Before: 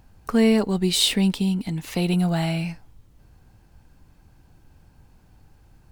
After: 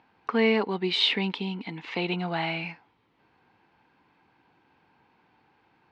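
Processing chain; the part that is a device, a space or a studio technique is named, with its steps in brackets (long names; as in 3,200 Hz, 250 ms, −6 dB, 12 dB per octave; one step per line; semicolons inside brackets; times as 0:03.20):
phone earpiece (loudspeaker in its box 340–3,700 Hz, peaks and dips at 600 Hz −7 dB, 940 Hz +5 dB, 2,200 Hz +5 dB)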